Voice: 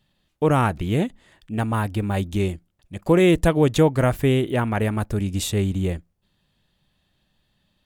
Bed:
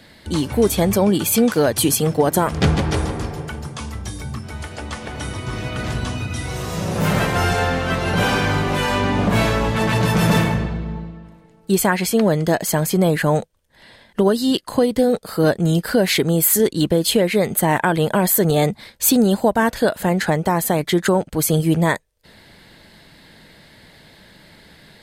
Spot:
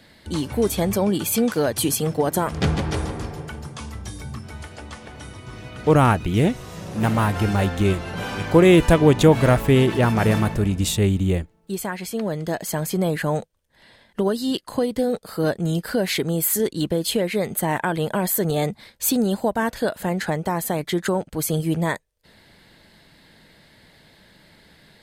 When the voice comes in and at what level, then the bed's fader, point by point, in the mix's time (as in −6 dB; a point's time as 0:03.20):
5.45 s, +3.0 dB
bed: 0:04.44 −4.5 dB
0:05.36 −11 dB
0:11.98 −11 dB
0:12.90 −5.5 dB